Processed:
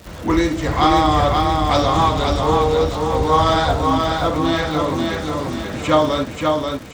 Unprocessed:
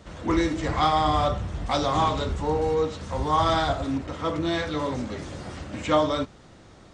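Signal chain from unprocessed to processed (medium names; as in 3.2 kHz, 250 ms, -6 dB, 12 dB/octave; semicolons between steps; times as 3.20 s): wow and flutter 28 cents; feedback delay 534 ms, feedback 45%, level -3.5 dB; crackle 290 per s -36 dBFS; trim +6 dB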